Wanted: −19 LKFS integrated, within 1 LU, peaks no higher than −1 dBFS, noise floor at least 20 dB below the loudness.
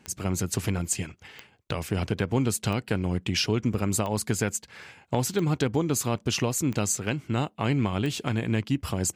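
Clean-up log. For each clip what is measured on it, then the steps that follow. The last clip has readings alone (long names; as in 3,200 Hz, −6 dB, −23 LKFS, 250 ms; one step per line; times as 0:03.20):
number of clicks 7; integrated loudness −27.5 LKFS; sample peak −12.0 dBFS; target loudness −19.0 LKFS
→ click removal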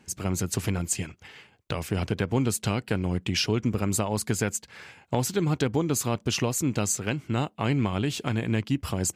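number of clicks 0; integrated loudness −27.5 LKFS; sample peak −12.0 dBFS; target loudness −19.0 LKFS
→ level +8.5 dB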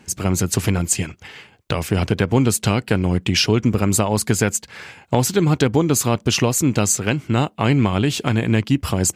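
integrated loudness −19.0 LKFS; sample peak −3.5 dBFS; background noise floor −52 dBFS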